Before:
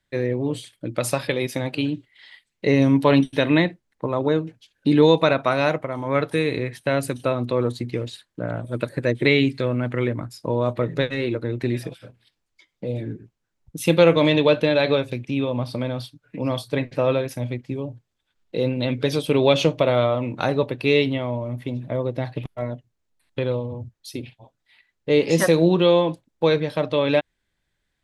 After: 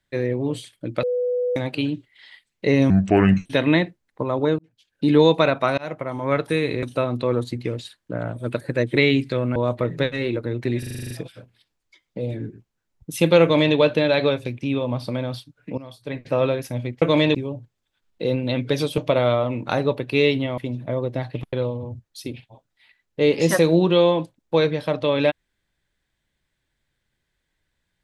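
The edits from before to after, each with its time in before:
1.03–1.56 bleep 494 Hz -19.5 dBFS
2.9–3.29 speed 70%
4.42–4.95 fade in linear
5.61–5.87 fade in
6.66–7.11 cut
9.84–10.54 cut
11.77 stutter 0.04 s, 9 plays
14.09–14.42 copy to 17.68
16.44–16.99 fade in quadratic, from -16.5 dB
19.31–19.69 cut
21.29–21.6 cut
22.55–23.42 cut

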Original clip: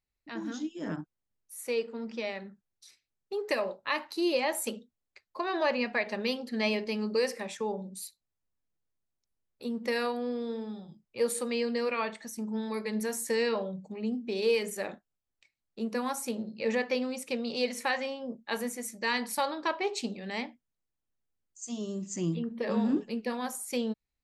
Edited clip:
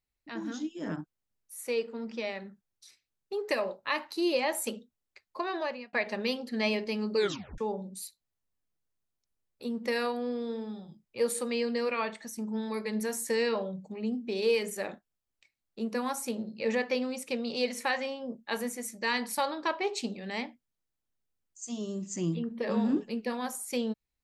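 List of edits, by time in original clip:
5.4–5.93 fade out
7.17 tape stop 0.41 s

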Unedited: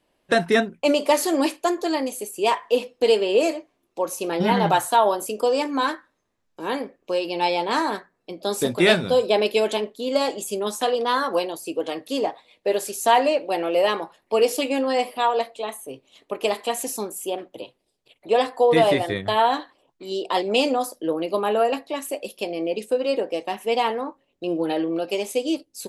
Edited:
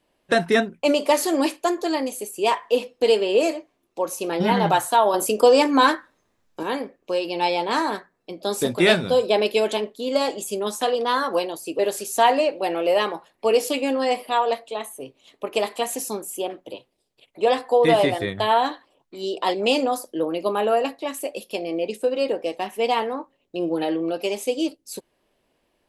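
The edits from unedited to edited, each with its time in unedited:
5.14–6.63 gain +6.5 dB
11.79–12.67 cut

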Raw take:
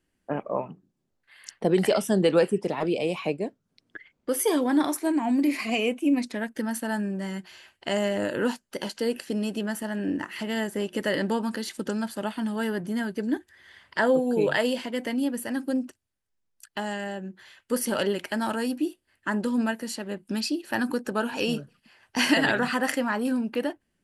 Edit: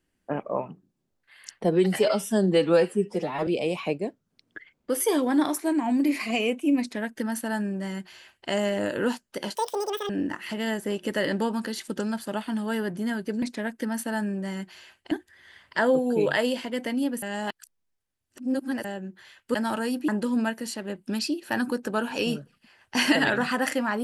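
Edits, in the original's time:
1.64–2.86 stretch 1.5×
6.19–7.88 copy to 13.32
8.94–9.99 speed 193%
15.43–17.05 reverse
17.75–18.31 cut
18.85–19.3 cut

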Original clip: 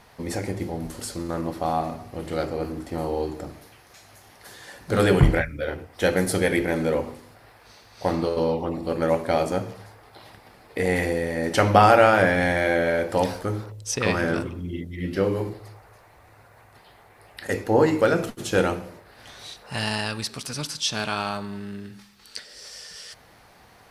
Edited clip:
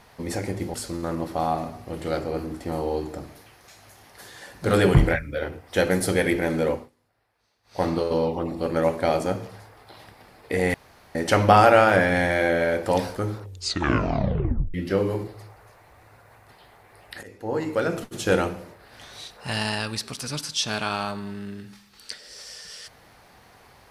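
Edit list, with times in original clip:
0.74–1 cut
6.97–8.08 dip -21 dB, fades 0.19 s
11–11.41 room tone
13.66 tape stop 1.34 s
17.49–18.52 fade in, from -22.5 dB

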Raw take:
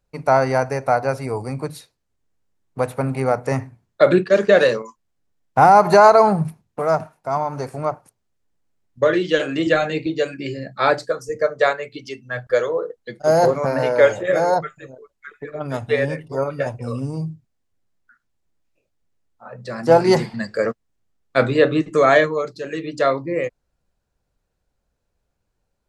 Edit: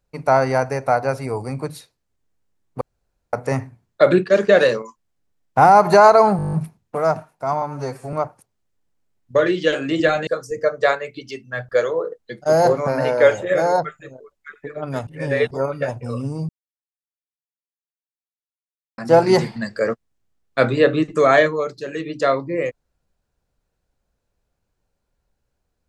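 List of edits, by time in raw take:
2.81–3.33 room tone
6.37 stutter 0.02 s, 9 plays
7.46–7.8 stretch 1.5×
9.94–11.05 cut
15.85–16.29 reverse
17.27–19.76 mute

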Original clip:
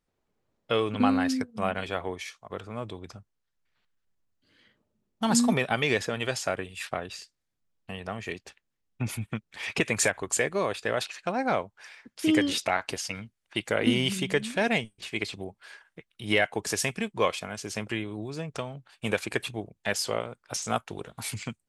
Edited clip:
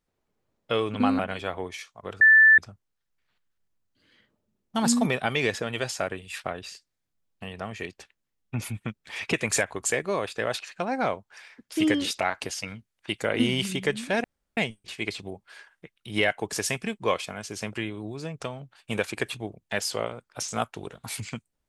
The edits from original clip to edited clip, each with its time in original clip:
1.19–1.66 cut
2.68–3.05 bleep 1760 Hz -11.5 dBFS
14.71 insert room tone 0.33 s

